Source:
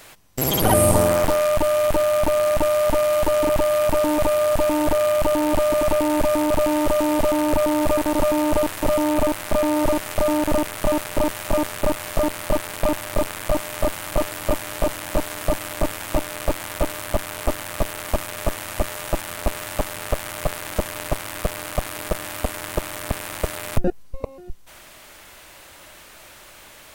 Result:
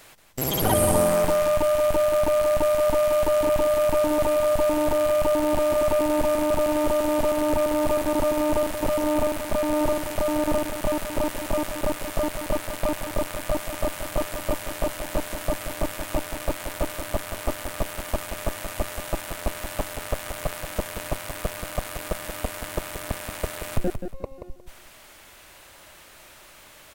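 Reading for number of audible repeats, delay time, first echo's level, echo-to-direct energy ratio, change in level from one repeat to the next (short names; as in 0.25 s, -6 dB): 3, 0.179 s, -8.0 dB, -8.0 dB, -13.0 dB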